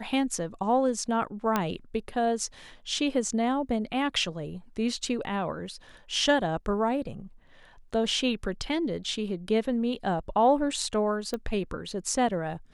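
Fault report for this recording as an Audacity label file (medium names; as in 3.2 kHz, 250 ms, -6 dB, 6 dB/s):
1.560000	1.560000	pop -11 dBFS
11.340000	11.340000	pop -19 dBFS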